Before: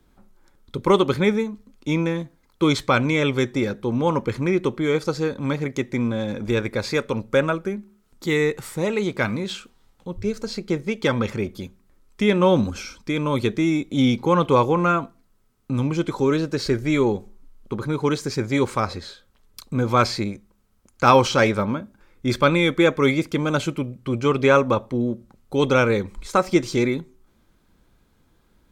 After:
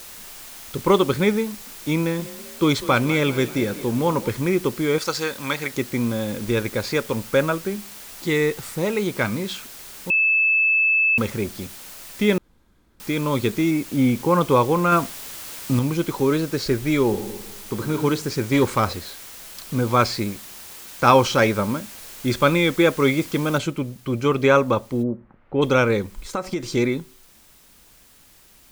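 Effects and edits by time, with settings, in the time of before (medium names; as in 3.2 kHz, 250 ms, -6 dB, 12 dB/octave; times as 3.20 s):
1.99–4.29 s: frequency-shifting echo 196 ms, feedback 52%, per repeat +30 Hz, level -16 dB
4.98–5.74 s: tilt shelf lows -9.5 dB, about 680 Hz
7.45–8.31 s: brick-wall FIR low-pass 8.1 kHz
10.10–11.18 s: bleep 2.62 kHz -15 dBFS
12.38–13.00 s: room tone
13.71–14.41 s: inverse Chebyshev low-pass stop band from 6.1 kHz, stop band 50 dB
14.92–15.79 s: gain +4 dB
17.05–17.98 s: reverb throw, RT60 1.1 s, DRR 6 dB
18.51–18.93 s: waveshaping leveller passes 1
23.58 s: noise floor step -40 dB -53 dB
25.02–25.61 s: low-pass 1.2 kHz -> 2.4 kHz 24 dB/octave
26.16–26.66 s: compression, threshold -21 dBFS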